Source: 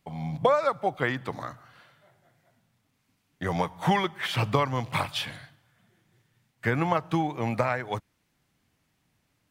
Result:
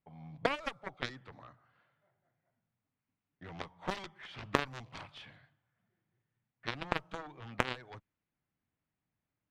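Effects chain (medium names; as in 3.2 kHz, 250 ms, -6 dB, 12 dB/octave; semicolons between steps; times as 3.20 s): Chebyshev shaper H 2 -23 dB, 3 -8 dB, 5 -31 dB, 7 -36 dB, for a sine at -8.5 dBFS; level-controlled noise filter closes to 2.3 kHz, open at -33.5 dBFS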